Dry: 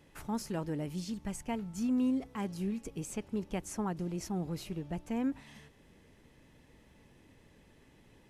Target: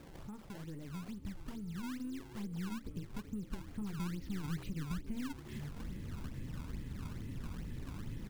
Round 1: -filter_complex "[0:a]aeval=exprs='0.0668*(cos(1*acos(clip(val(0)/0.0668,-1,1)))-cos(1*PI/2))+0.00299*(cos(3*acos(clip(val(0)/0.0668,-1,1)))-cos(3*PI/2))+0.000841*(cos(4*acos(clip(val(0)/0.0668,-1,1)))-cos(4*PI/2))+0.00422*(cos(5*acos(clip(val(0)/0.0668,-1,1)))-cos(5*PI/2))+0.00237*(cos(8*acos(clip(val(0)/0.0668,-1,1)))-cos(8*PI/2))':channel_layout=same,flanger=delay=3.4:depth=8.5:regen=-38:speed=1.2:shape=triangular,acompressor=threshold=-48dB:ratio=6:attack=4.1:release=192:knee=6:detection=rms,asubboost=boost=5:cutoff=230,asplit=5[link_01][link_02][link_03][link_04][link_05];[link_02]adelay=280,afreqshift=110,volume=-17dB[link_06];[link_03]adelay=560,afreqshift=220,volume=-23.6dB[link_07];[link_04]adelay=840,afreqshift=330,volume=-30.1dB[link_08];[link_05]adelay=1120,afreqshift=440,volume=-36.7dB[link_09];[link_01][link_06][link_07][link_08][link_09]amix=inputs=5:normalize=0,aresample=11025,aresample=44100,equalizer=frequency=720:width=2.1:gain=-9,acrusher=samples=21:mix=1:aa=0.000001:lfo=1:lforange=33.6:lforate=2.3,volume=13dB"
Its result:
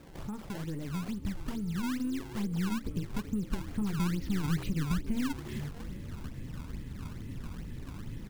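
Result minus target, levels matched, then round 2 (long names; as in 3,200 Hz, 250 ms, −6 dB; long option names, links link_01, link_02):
downward compressor: peak gain reduction −9 dB
-filter_complex "[0:a]aeval=exprs='0.0668*(cos(1*acos(clip(val(0)/0.0668,-1,1)))-cos(1*PI/2))+0.00299*(cos(3*acos(clip(val(0)/0.0668,-1,1)))-cos(3*PI/2))+0.000841*(cos(4*acos(clip(val(0)/0.0668,-1,1)))-cos(4*PI/2))+0.00422*(cos(5*acos(clip(val(0)/0.0668,-1,1)))-cos(5*PI/2))+0.00237*(cos(8*acos(clip(val(0)/0.0668,-1,1)))-cos(8*PI/2))':channel_layout=same,flanger=delay=3.4:depth=8.5:regen=-38:speed=1.2:shape=triangular,acompressor=threshold=-58.5dB:ratio=6:attack=4.1:release=192:knee=6:detection=rms,asubboost=boost=5:cutoff=230,asplit=5[link_01][link_02][link_03][link_04][link_05];[link_02]adelay=280,afreqshift=110,volume=-17dB[link_06];[link_03]adelay=560,afreqshift=220,volume=-23.6dB[link_07];[link_04]adelay=840,afreqshift=330,volume=-30.1dB[link_08];[link_05]adelay=1120,afreqshift=440,volume=-36.7dB[link_09];[link_01][link_06][link_07][link_08][link_09]amix=inputs=5:normalize=0,aresample=11025,aresample=44100,equalizer=frequency=720:width=2.1:gain=-9,acrusher=samples=21:mix=1:aa=0.000001:lfo=1:lforange=33.6:lforate=2.3,volume=13dB"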